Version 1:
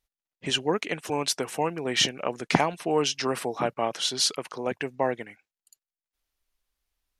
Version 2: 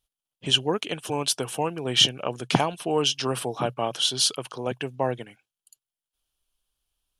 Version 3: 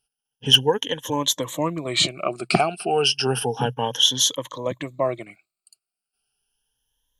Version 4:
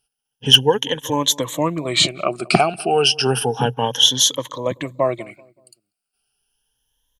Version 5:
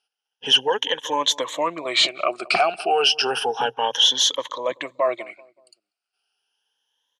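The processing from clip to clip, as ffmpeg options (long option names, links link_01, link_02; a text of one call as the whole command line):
ffmpeg -i in.wav -af "equalizer=frequency=125:width_type=o:width=0.33:gain=9,equalizer=frequency=2000:width_type=o:width=0.33:gain=-10,equalizer=frequency=3150:width_type=o:width=0.33:gain=9,equalizer=frequency=10000:width_type=o:width=0.33:gain=8" out.wav
ffmpeg -i in.wav -af "afftfilt=real='re*pow(10,18/40*sin(2*PI*(1.1*log(max(b,1)*sr/1024/100)/log(2)-(0.32)*(pts-256)/sr)))':imag='im*pow(10,18/40*sin(2*PI*(1.1*log(max(b,1)*sr/1024/100)/log(2)-(0.32)*(pts-256)/sr)))':win_size=1024:overlap=0.75,asoftclip=type=hard:threshold=-5.5dB" out.wav
ffmpeg -i in.wav -filter_complex "[0:a]asplit=2[link_01][link_02];[link_02]adelay=190,lowpass=frequency=890:poles=1,volume=-21dB,asplit=2[link_03][link_04];[link_04]adelay=190,lowpass=frequency=890:poles=1,volume=0.45,asplit=2[link_05][link_06];[link_06]adelay=190,lowpass=frequency=890:poles=1,volume=0.45[link_07];[link_01][link_03][link_05][link_07]amix=inputs=4:normalize=0,volume=4dB" out.wav
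ffmpeg -i in.wav -af "apsyclip=11dB,highpass=570,lowpass=5000,volume=-9dB" out.wav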